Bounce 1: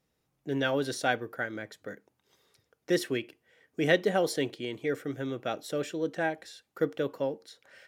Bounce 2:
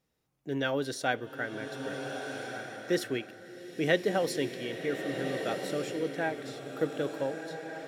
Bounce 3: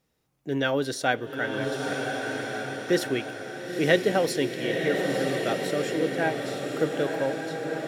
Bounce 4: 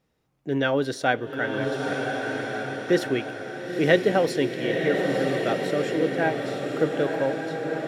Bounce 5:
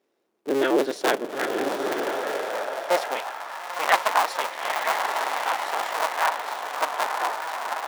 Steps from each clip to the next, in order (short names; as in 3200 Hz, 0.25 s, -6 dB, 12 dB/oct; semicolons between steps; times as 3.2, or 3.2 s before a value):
bloom reverb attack 1.46 s, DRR 5 dB; gain -2 dB
diffused feedback echo 0.93 s, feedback 41%, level -6 dB; gain +5 dB
high shelf 4800 Hz -10 dB; gain +2.5 dB
cycle switcher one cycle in 2, inverted; high-pass sweep 360 Hz -> 940 Hz, 1.96–3.49; gain -2 dB